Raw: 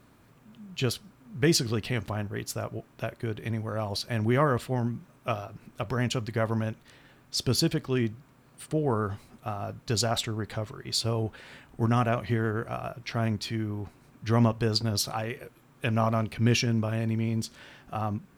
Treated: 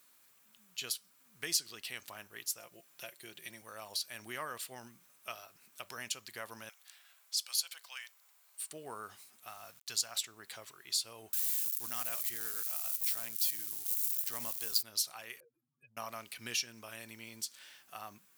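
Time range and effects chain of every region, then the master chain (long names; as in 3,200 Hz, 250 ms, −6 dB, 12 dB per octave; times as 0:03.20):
0:02.58–0:03.62: dynamic equaliser 1,200 Hz, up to −6 dB, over −52 dBFS, Q 1.5 + comb filter 5.7 ms, depth 54%
0:06.69–0:08.70: Butterworth high-pass 680 Hz 48 dB per octave + frequency shifter −140 Hz
0:09.47–0:10.16: parametric band 360 Hz −6 dB 1.4 octaves + centre clipping without the shift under −51 dBFS
0:11.33–0:14.83: spike at every zero crossing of −28 dBFS + high-shelf EQ 5,100 Hz +4.5 dB
0:15.40–0:15.97: expanding power law on the bin magnitudes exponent 3.3 + downward compressor 4 to 1, threshold −42 dBFS
whole clip: first difference; downward compressor 1.5 to 1, threshold −45 dBFS; level +4.5 dB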